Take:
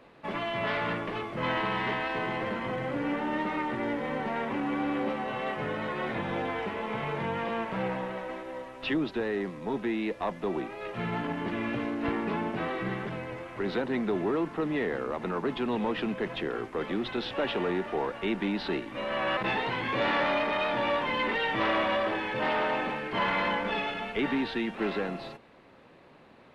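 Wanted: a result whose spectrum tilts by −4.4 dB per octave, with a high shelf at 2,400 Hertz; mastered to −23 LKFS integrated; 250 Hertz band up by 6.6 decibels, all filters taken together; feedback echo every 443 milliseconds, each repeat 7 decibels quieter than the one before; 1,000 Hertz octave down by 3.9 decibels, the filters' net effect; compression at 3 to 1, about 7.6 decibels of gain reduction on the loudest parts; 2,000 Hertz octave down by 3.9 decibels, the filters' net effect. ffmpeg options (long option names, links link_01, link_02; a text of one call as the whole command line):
ffmpeg -i in.wav -af "equalizer=frequency=250:width_type=o:gain=8.5,equalizer=frequency=1000:width_type=o:gain=-5,equalizer=frequency=2000:width_type=o:gain=-7.5,highshelf=frequency=2400:gain=8,acompressor=threshold=-30dB:ratio=3,aecho=1:1:443|886|1329|1772|2215:0.447|0.201|0.0905|0.0407|0.0183,volume=9dB" out.wav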